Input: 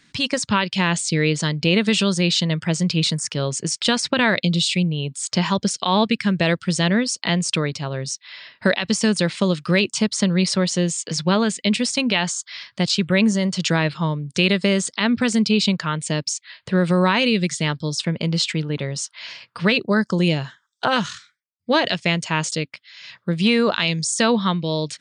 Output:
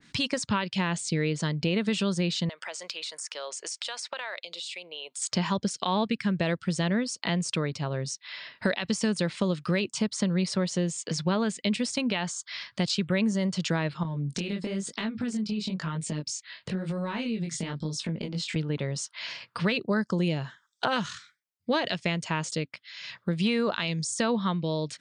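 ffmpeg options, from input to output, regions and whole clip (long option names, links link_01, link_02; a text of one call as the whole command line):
ffmpeg -i in.wav -filter_complex "[0:a]asettb=1/sr,asplit=3[link_01][link_02][link_03];[link_01]atrim=end=2.494[link_04];[link_02]atrim=start=2.49:end=5.22,asetpts=PTS-STARTPTS,afade=type=in:duration=0.004:curve=qsin,afade=type=out:start_time=2.726:duration=0.004:curve=qsin,highpass=frequency=570:width=0.5412,highpass=frequency=570:width=1.3066,acompressor=threshold=-32dB:ratio=4:attack=3.2:release=140:knee=1:detection=peak[link_05];[link_03]atrim=start=5.216[link_06];[link_04][link_05]acrossfade=duration=0.004:curve1=hsin:curve2=qsin[link_07];[link_07][link_06]acrossfade=duration=0.004:curve1=qsin:curve2=hsin,asettb=1/sr,asplit=3[link_08][link_09][link_10];[link_08]atrim=end=14.034[link_11];[link_09]atrim=start=14.03:end=18.56,asetpts=PTS-STARTPTS,afade=type=in:duration=0.004:curve=qsin,afade=type=out:start_time=4.526:duration=0.004:curve=qsin,equalizer=frequency=240:width=0.88:gain=7,acompressor=threshold=-23dB:ratio=6:attack=3.2:release=140:knee=1:detection=peak,flanger=delay=18:depth=6.2:speed=1[link_12];[link_10]atrim=start=18.556[link_13];[link_11][link_12]acrossfade=duration=0.004:curve1=hsin:curve2=qsin[link_14];[link_14][link_13]acrossfade=duration=0.004:curve1=qsin:curve2=hsin,acompressor=threshold=-29dB:ratio=2,adynamicequalizer=threshold=0.00708:dfrequency=1900:dqfactor=0.7:tfrequency=1900:tqfactor=0.7:attack=5:release=100:ratio=0.375:range=2.5:mode=cutabove:tftype=highshelf" out.wav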